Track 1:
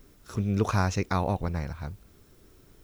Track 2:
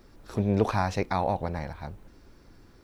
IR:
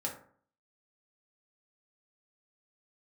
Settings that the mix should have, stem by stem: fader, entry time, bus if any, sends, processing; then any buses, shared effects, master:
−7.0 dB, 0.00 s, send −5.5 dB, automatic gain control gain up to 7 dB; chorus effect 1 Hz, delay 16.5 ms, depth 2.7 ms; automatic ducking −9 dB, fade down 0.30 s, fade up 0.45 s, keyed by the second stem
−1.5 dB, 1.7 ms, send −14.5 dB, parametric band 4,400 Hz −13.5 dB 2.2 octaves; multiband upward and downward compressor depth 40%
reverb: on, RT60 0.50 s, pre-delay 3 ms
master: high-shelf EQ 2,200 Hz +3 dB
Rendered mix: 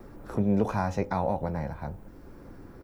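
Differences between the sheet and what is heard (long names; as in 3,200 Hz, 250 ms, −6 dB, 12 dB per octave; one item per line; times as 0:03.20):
stem 1: send off
master: missing high-shelf EQ 2,200 Hz +3 dB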